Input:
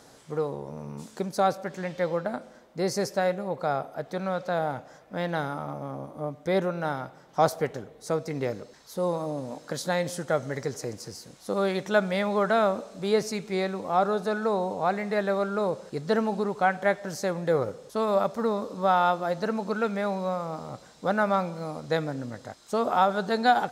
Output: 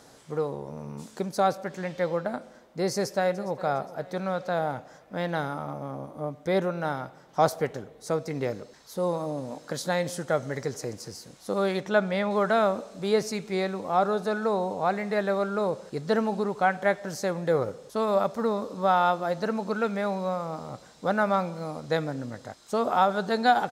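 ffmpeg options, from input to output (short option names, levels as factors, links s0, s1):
-filter_complex "[0:a]asplit=2[s0][s1];[s1]afade=t=in:st=2.93:d=0.01,afade=t=out:st=3.63:d=0.01,aecho=0:1:410|820|1230|1640:0.133352|0.0600085|0.0270038|0.0121517[s2];[s0][s2]amix=inputs=2:normalize=0,asettb=1/sr,asplit=3[s3][s4][s5];[s3]atrim=end=11.804[s6];[s4]atrim=start=11.8:end=12.31,asetpts=PTS-STARTPTS,afade=t=in:d=0.004:c=qsin,afade=t=out:st=0.506:d=0.004:c=qsin,highshelf=f=6500:g=-10[s7];[s5]atrim=start=12.306[s8];[s6][s7]acrossfade=d=0.004:c1=hsin:c2=qsin[s9];[s9][s8]acrossfade=d=0.004:c1=qsin:c2=hsin"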